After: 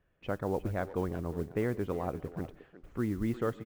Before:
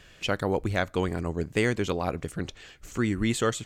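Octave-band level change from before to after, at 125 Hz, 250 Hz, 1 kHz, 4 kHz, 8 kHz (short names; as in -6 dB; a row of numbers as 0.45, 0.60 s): -5.5 dB, -5.5 dB, -7.0 dB, under -20 dB, under -15 dB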